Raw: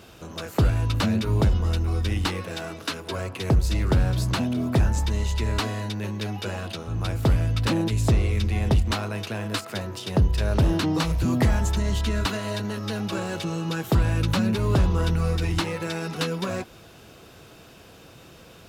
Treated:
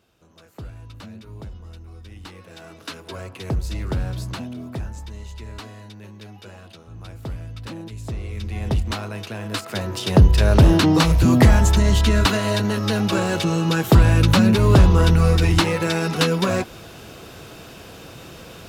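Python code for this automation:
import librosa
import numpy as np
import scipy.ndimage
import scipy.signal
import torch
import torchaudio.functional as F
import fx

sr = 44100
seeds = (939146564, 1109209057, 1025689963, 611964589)

y = fx.gain(x, sr, db=fx.line((2.1, -16.5), (2.92, -4.0), (4.12, -4.0), (4.97, -11.0), (8.04, -11.0), (8.75, -1.0), (9.39, -1.0), (10.06, 8.0)))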